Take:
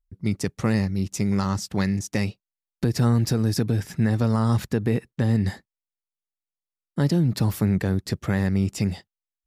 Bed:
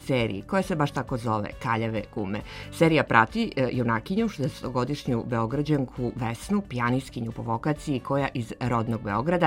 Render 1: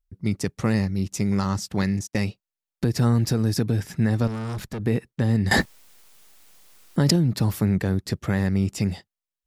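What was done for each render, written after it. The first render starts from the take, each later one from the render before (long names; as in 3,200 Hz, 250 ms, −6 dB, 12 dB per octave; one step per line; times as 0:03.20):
0:01.82–0:02.28: noise gate −34 dBFS, range −24 dB
0:04.27–0:04.80: tube saturation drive 27 dB, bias 0.45
0:05.51–0:07.16: envelope flattener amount 100%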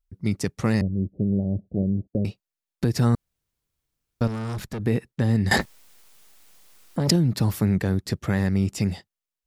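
0:00.81–0:02.25: Butterworth low-pass 660 Hz 72 dB per octave
0:03.15–0:04.21: fill with room tone
0:05.56–0:07.08: saturating transformer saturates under 820 Hz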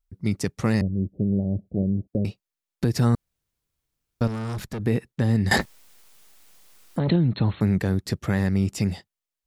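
0:06.99–0:07.61: linear-phase brick-wall low-pass 4,300 Hz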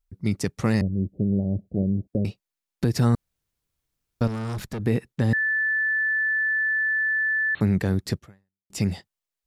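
0:05.33–0:07.55: beep over 1,750 Hz −20.5 dBFS
0:08.17–0:08.70: fade out exponential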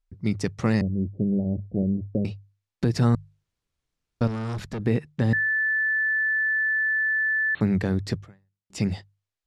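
Bessel low-pass filter 6,000 Hz, order 2
mains-hum notches 50/100/150 Hz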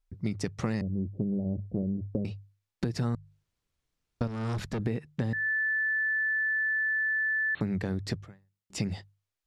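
downward compressor, threshold −27 dBFS, peak gain reduction 10.5 dB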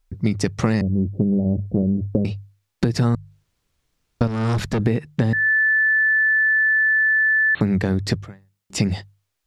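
level +11 dB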